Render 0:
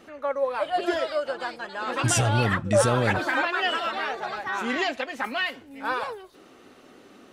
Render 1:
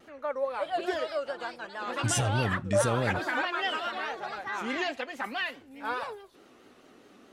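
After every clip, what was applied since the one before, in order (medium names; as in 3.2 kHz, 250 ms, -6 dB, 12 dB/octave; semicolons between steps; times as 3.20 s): vibrato 4.7 Hz 92 cents; trim -5 dB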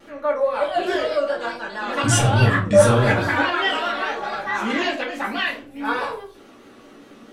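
simulated room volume 200 m³, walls furnished, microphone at 2.4 m; trim +4.5 dB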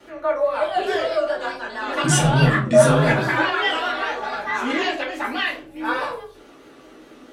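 frequency shift +30 Hz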